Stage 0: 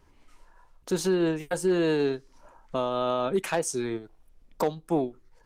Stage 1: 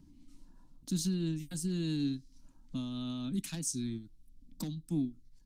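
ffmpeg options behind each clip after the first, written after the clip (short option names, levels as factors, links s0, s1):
-filter_complex "[0:a]firequalizer=gain_entry='entry(280,0);entry(410,-30);entry(3900,-3)':delay=0.05:min_phase=1,acrossover=split=200|920|2200[s0][s1][s2][s3];[s1]acompressor=mode=upward:threshold=0.00282:ratio=2.5[s4];[s0][s4][s2][s3]amix=inputs=4:normalize=0"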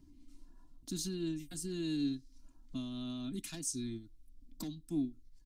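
-af "aecho=1:1:2.9:0.52,volume=0.708"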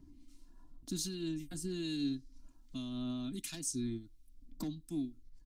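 -filter_complex "[0:a]acrossover=split=1800[s0][s1];[s0]aeval=exprs='val(0)*(1-0.5/2+0.5/2*cos(2*PI*1.3*n/s))':c=same[s2];[s1]aeval=exprs='val(0)*(1-0.5/2-0.5/2*cos(2*PI*1.3*n/s))':c=same[s3];[s2][s3]amix=inputs=2:normalize=0,volume=1.41"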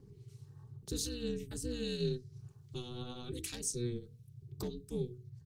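-af "bandreject=f=50:t=h:w=6,bandreject=f=100:t=h:w=6,bandreject=f=150:t=h:w=6,bandreject=f=200:t=h:w=6,bandreject=f=250:t=h:w=6,bandreject=f=300:t=h:w=6,bandreject=f=350:t=h:w=6,aeval=exprs='val(0)*sin(2*PI*120*n/s)':c=same,volume=1.58"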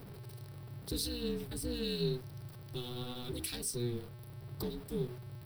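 -af "aeval=exprs='val(0)+0.5*0.00422*sgn(val(0))':c=same,aexciter=amount=1.1:drive=2.5:freq=3700"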